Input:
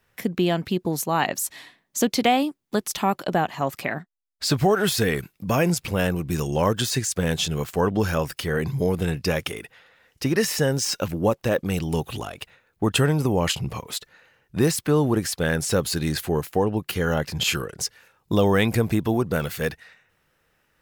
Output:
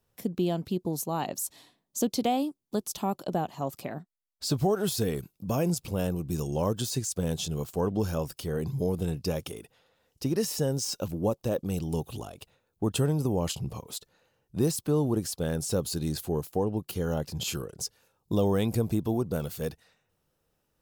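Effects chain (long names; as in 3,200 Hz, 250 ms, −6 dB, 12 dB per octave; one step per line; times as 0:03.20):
parametric band 1,900 Hz −14.5 dB 1.3 octaves
level −5 dB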